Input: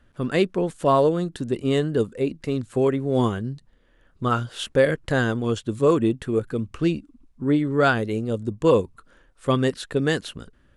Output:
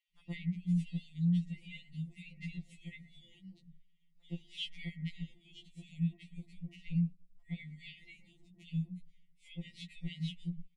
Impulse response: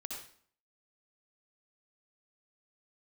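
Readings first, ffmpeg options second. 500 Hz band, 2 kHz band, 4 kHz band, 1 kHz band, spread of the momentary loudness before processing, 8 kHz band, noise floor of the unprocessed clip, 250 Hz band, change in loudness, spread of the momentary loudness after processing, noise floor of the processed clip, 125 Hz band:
under -40 dB, -22.5 dB, -13.0 dB, under -40 dB, 10 LU, under -20 dB, -59 dBFS, -14.5 dB, -16.0 dB, 20 LU, -68 dBFS, -10.5 dB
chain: -filter_complex "[0:a]afftfilt=real='re*(1-between(b*sr/4096,250,1900))':imag='im*(1-between(b*sr/4096,250,1900))':win_size=4096:overlap=0.75,aemphasis=mode=reproduction:type=75fm,acrossover=split=3500[a][b];[b]acompressor=threshold=-55dB:ratio=4:attack=1:release=60[c];[a][c]amix=inputs=2:normalize=0,agate=range=-15dB:threshold=-45dB:ratio=16:detection=peak,asplit=2[d][e];[e]alimiter=level_in=0.5dB:limit=-24dB:level=0:latency=1,volume=-0.5dB,volume=-0.5dB[f];[d][f]amix=inputs=2:normalize=0,acompressor=threshold=-35dB:ratio=16,acrossover=split=1300[g][h];[g]adelay=120[i];[i][h]amix=inputs=2:normalize=0,afftfilt=real='re*2.83*eq(mod(b,8),0)':imag='im*2.83*eq(mod(b,8),0)':win_size=2048:overlap=0.75,volume=2dB"

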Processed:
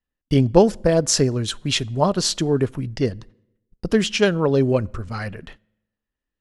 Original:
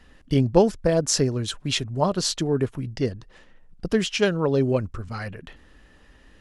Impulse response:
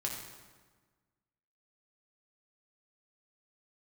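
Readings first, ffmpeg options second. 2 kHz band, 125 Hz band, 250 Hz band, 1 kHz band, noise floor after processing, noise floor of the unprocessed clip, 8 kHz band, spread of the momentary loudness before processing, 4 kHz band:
+3.5 dB, +3.5 dB, +3.5 dB, +3.5 dB, under -85 dBFS, -54 dBFS, +3.5 dB, 14 LU, +3.5 dB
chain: -filter_complex "[0:a]agate=range=-37dB:threshold=-43dB:ratio=16:detection=peak,asplit=2[a][b];[1:a]atrim=start_sample=2205,asetrate=74970,aresample=44100[c];[b][c]afir=irnorm=-1:irlink=0,volume=-20.5dB[d];[a][d]amix=inputs=2:normalize=0,volume=3dB"

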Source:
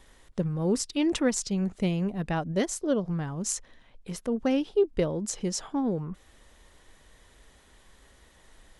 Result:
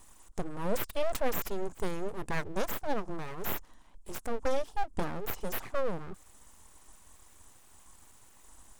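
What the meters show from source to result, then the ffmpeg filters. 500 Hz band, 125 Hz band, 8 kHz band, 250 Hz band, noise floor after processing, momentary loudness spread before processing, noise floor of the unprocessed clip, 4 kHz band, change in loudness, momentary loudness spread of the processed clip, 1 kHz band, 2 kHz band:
-5.5 dB, -11.0 dB, -12.5 dB, -13.0 dB, -57 dBFS, 9 LU, -59 dBFS, -7.5 dB, -7.0 dB, 9 LU, +1.5 dB, -0.5 dB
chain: -filter_complex "[0:a]equalizer=f=125:t=o:w=1:g=-11,equalizer=f=250:t=o:w=1:g=4,equalizer=f=500:t=o:w=1:g=-10,equalizer=f=1k:t=o:w=1:g=8,equalizer=f=2k:t=o:w=1:g=-11,equalizer=f=4k:t=o:w=1:g=-8,equalizer=f=8k:t=o:w=1:g=12,acrossover=split=5600[a][b];[b]acompressor=threshold=-35dB:ratio=4:attack=1:release=60[c];[a][c]amix=inputs=2:normalize=0,aeval=exprs='abs(val(0))':c=same,volume=1dB"

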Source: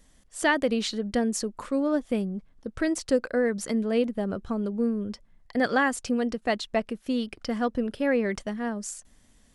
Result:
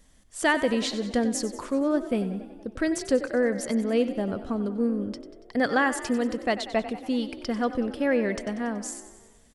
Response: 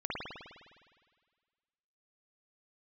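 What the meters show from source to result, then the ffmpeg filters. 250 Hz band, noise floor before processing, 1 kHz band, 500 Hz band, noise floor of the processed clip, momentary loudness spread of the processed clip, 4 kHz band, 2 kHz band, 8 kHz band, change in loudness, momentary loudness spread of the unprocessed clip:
+0.5 dB, -60 dBFS, +1.0 dB, +0.5 dB, -56 dBFS, 9 LU, +0.5 dB, +0.5 dB, +0.5 dB, +0.5 dB, 9 LU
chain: -filter_complex "[0:a]asplit=8[a][b][c][d][e][f][g][h];[b]adelay=94,afreqshift=35,volume=-13.5dB[i];[c]adelay=188,afreqshift=70,volume=-17.7dB[j];[d]adelay=282,afreqshift=105,volume=-21.8dB[k];[e]adelay=376,afreqshift=140,volume=-26dB[l];[f]adelay=470,afreqshift=175,volume=-30.1dB[m];[g]adelay=564,afreqshift=210,volume=-34.3dB[n];[h]adelay=658,afreqshift=245,volume=-38.4dB[o];[a][i][j][k][l][m][n][o]amix=inputs=8:normalize=0,asplit=2[p][q];[1:a]atrim=start_sample=2205,asetrate=42777,aresample=44100[r];[q][r]afir=irnorm=-1:irlink=0,volume=-26dB[s];[p][s]amix=inputs=2:normalize=0"

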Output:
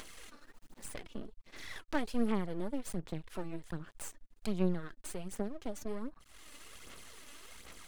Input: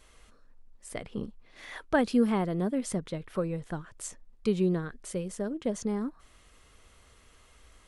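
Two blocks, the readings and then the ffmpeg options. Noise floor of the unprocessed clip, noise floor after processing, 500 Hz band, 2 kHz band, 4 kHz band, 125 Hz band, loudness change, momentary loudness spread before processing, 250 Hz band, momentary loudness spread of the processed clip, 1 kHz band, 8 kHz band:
-59 dBFS, -65 dBFS, -9.5 dB, -7.0 dB, -3.5 dB, -7.0 dB, -8.5 dB, 16 LU, -8.0 dB, 18 LU, -8.0 dB, -5.5 dB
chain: -filter_complex "[0:a]equalizer=f=710:w=0.79:g=-6,bandreject=f=5.5k:w=27,acrossover=split=160[a][b];[b]acompressor=mode=upward:threshold=-31dB:ratio=2.5[c];[a][c]amix=inputs=2:normalize=0,aeval=exprs='max(val(0),0)':c=same,aphaser=in_gain=1:out_gain=1:delay=3.5:decay=0.48:speed=1.3:type=sinusoidal,volume=-5dB"

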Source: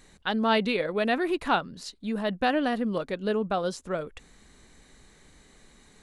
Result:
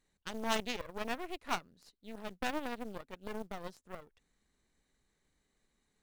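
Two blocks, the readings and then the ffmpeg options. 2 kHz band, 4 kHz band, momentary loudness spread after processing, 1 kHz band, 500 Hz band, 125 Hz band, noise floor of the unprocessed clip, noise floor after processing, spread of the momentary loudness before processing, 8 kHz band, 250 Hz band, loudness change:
-11.0 dB, -9.0 dB, 16 LU, -11.5 dB, -15.0 dB, -15.5 dB, -58 dBFS, -81 dBFS, 10 LU, -2.0 dB, -15.0 dB, -12.0 dB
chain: -af "acrusher=bits=7:mode=log:mix=0:aa=0.000001,aeval=exprs='0.316*(cos(1*acos(clip(val(0)/0.316,-1,1)))-cos(1*PI/2))+0.1*(cos(3*acos(clip(val(0)/0.316,-1,1)))-cos(3*PI/2))+0.0251*(cos(4*acos(clip(val(0)/0.316,-1,1)))-cos(4*PI/2))+0.00316*(cos(5*acos(clip(val(0)/0.316,-1,1)))-cos(5*PI/2))+0.002*(cos(8*acos(clip(val(0)/0.316,-1,1)))-cos(8*PI/2))':c=same,volume=-2.5dB"

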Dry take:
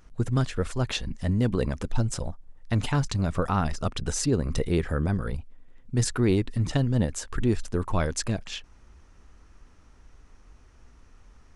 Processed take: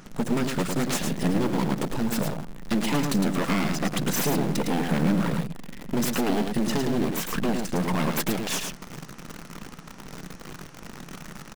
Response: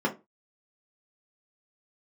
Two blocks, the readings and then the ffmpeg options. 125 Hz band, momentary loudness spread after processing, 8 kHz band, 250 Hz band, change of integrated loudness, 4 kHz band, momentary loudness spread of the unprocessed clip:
-4.0 dB, 17 LU, +2.0 dB, +4.0 dB, +1.5 dB, +3.5 dB, 7 LU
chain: -filter_complex "[0:a]acompressor=threshold=-34dB:ratio=5,asplit=2[a][b];[1:a]atrim=start_sample=2205,asetrate=28224,aresample=44100[c];[b][c]afir=irnorm=-1:irlink=0,volume=-33dB[d];[a][d]amix=inputs=2:normalize=0,aeval=exprs='0.126*(cos(1*acos(clip(val(0)/0.126,-1,1)))-cos(1*PI/2))+0.0447*(cos(5*acos(clip(val(0)/0.126,-1,1)))-cos(5*PI/2))':c=same,aeval=exprs='abs(val(0))':c=same,aecho=1:1:108:0.531,asplit=2[e][f];[f]acrusher=bits=5:mix=0:aa=0.000001,volume=-7dB[g];[e][g]amix=inputs=2:normalize=0,lowshelf=f=120:t=q:w=3:g=-11.5,volume=3.5dB"

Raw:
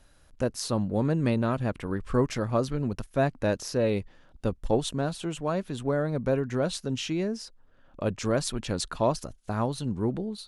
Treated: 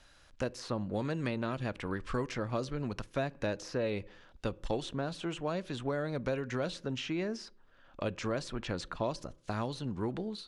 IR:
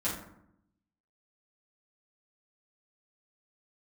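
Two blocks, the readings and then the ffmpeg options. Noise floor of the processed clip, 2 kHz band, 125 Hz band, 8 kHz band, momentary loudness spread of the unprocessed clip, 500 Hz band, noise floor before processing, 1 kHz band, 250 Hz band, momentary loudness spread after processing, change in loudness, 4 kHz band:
-61 dBFS, -3.0 dB, -8.5 dB, -12.0 dB, 6 LU, -7.5 dB, -58 dBFS, -6.5 dB, -7.5 dB, 5 LU, -7.5 dB, -5.5 dB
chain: -filter_complex "[0:a]tiltshelf=f=790:g=-5.5,asplit=2[a][b];[1:a]atrim=start_sample=2205,asetrate=74970,aresample=44100[c];[b][c]afir=irnorm=-1:irlink=0,volume=-22.5dB[d];[a][d]amix=inputs=2:normalize=0,acrossover=split=600|2200[e][f][g];[e]acompressor=threshold=-32dB:ratio=4[h];[f]acompressor=threshold=-41dB:ratio=4[i];[g]acompressor=threshold=-46dB:ratio=4[j];[h][i][j]amix=inputs=3:normalize=0,lowpass=6.1k"

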